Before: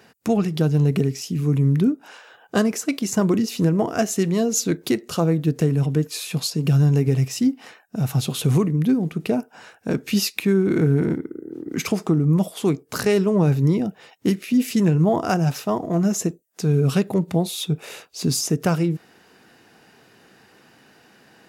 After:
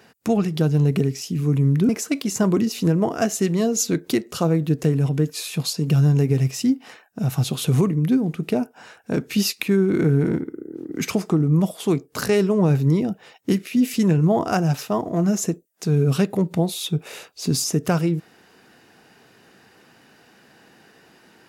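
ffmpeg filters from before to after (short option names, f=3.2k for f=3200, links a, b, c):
-filter_complex "[0:a]asplit=2[a][b];[a]atrim=end=1.892[c];[b]atrim=start=2.658[d];[c][d]acrossfade=d=0.004:c1=hsin:c2=hsin"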